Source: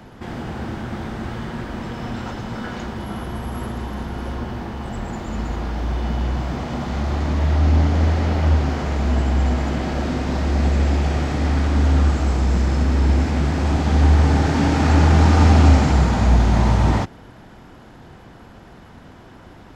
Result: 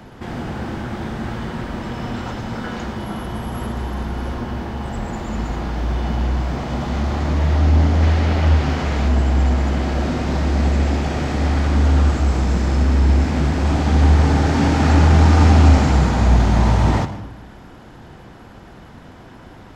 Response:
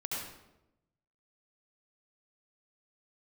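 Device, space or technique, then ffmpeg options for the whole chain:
saturated reverb return: -filter_complex "[0:a]asplit=2[link_01][link_02];[1:a]atrim=start_sample=2205[link_03];[link_02][link_03]afir=irnorm=-1:irlink=0,asoftclip=type=tanh:threshold=-13.5dB,volume=-9.5dB[link_04];[link_01][link_04]amix=inputs=2:normalize=0,asettb=1/sr,asplit=3[link_05][link_06][link_07];[link_05]atrim=end=8.024[link_08];[link_06]atrim=start=8.02:end=9.08,asetpts=PTS-STARTPTS,afade=type=in:duration=0.004:curve=qsin,afade=type=out:start_time=1.056:duration=0.004:curve=qsin,equalizer=frequency=2800:width_type=o:width=1.8:gain=4[link_09];[link_07]atrim=start=9.076[link_10];[link_08][link_09]acrossfade=duration=0.004:curve1=hsin:curve2=qsin[link_11];[link_11][link_10]acrossfade=duration=0.004:curve1=qsin:curve2=hsin"

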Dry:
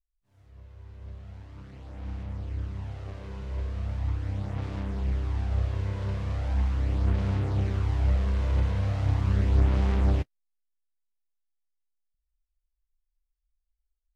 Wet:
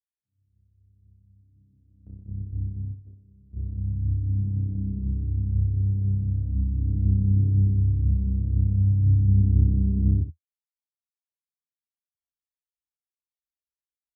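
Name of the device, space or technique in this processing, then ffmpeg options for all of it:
the neighbour's flat through the wall: -af "highpass=frequency=77:width=0.5412,highpass=frequency=77:width=1.3066,lowpass=frequency=260:width=0.5412,lowpass=frequency=260:width=1.3066,equalizer=frequency=82:width_type=o:width=0.47:gain=5,agate=range=-19dB:threshold=-35dB:ratio=16:detection=peak,aecho=1:1:72:0.282,volume=4.5dB"

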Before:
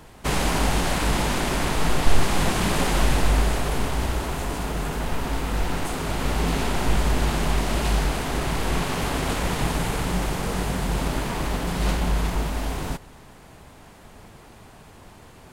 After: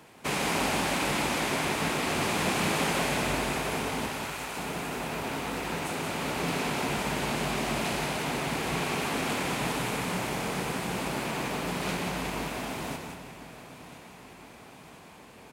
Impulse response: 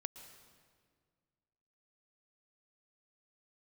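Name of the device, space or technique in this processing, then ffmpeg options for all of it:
PA in a hall: -filter_complex "[0:a]asettb=1/sr,asplit=3[link_01][link_02][link_03];[link_01]atrim=end=4.094[link_04];[link_02]atrim=start=4.09:end=4.57,asetpts=PTS-STARTPTS,afade=type=in:duration=0.004:curve=qsin,afade=type=out:start_time=0.476:duration=0.004:curve=qsin,highpass=830[link_05];[link_03]atrim=start=4.566[link_06];[link_04][link_05]acrossfade=duration=0.004:curve1=hsin:curve2=qsin[link_07];[link_07][link_06]acrossfade=duration=0.004:curve1=qsin:curve2=hsin,highpass=160,equalizer=frequency=2400:width_type=o:width=0.35:gain=5.5,aecho=1:1:180:0.447,aecho=1:1:1016|2032|3048|4064|5080|6096:0.141|0.0833|0.0492|0.029|0.0171|0.0101[link_08];[1:a]atrim=start_sample=2205[link_09];[link_08][link_09]afir=irnorm=-1:irlink=0,volume=-1.5dB"

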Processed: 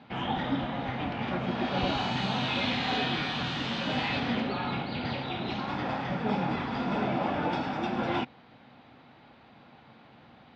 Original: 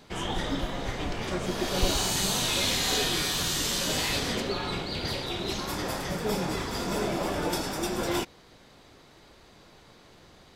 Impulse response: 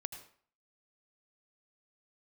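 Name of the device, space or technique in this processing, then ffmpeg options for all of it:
guitar cabinet: -af "highpass=92,equalizer=frequency=130:width_type=q:width=4:gain=6,equalizer=frequency=240:width_type=q:width=4:gain=10,equalizer=frequency=390:width_type=q:width=4:gain=-6,equalizer=frequency=800:width_type=q:width=4:gain=8,equalizer=frequency=1400:width_type=q:width=4:gain=3,equalizer=frequency=2500:width_type=q:width=4:gain=3,lowpass=frequency=3500:width=0.5412,lowpass=frequency=3500:width=1.3066,volume=-2dB"

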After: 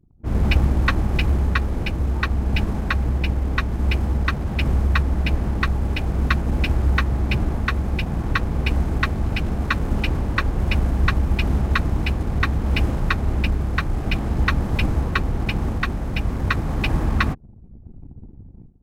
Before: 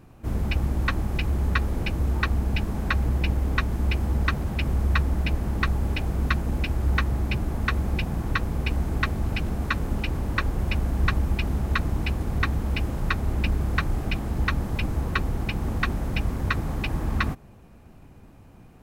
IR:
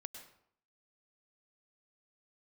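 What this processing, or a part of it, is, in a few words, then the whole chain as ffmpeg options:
voice memo with heavy noise removal: -af "anlmdn=0.0631,dynaudnorm=framelen=120:gausssize=5:maxgain=15dB,volume=-4dB"

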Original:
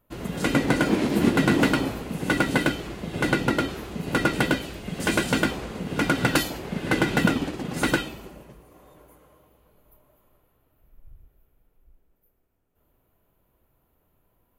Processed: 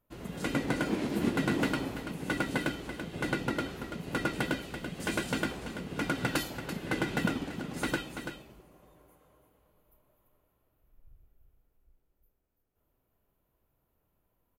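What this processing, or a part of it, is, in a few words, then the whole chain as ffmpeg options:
ducked delay: -filter_complex "[0:a]asplit=3[link_01][link_02][link_03];[link_02]adelay=335,volume=-8dB[link_04];[link_03]apad=whole_len=657803[link_05];[link_04][link_05]sidechaincompress=threshold=-32dB:ratio=8:attack=16:release=183[link_06];[link_01][link_06]amix=inputs=2:normalize=0,volume=-9dB"

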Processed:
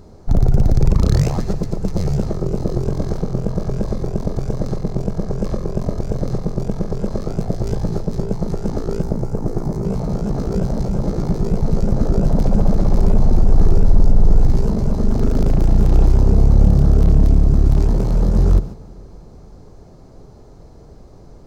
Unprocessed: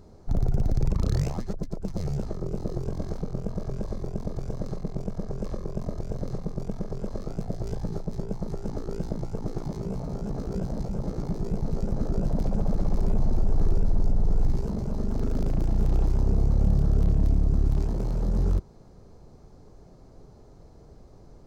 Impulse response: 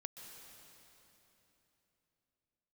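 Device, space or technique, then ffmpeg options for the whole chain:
keyed gated reverb: -filter_complex "[0:a]asettb=1/sr,asplit=3[link_01][link_02][link_03];[link_01]atrim=end=9.024[link_04];[link_02]atrim=start=9.02:end=9.85,asetpts=PTS-STARTPTS,afade=type=in:duration=0.004:curve=qsin,afade=type=out:start_time=0.826:duration=0.004:curve=qsin,equalizer=frequency=3300:width_type=o:width=1.5:gain=-11[link_05];[link_03]atrim=start=9.846[link_06];[link_04][link_05]acrossfade=duration=0.004:curve1=hsin:curve2=qsin[link_07];[link_07][link_06]acrossfade=duration=0.004:curve1=qsin:curve2=hsin,asplit=3[link_08][link_09][link_10];[1:a]atrim=start_sample=2205[link_11];[link_09][link_11]afir=irnorm=-1:irlink=0[link_12];[link_10]apad=whole_len=946572[link_13];[link_12][link_13]sidechaingate=range=-10dB:threshold=-39dB:ratio=16:detection=peak,volume=0.5dB[link_14];[link_08][link_14]amix=inputs=2:normalize=0,volume=6.5dB"

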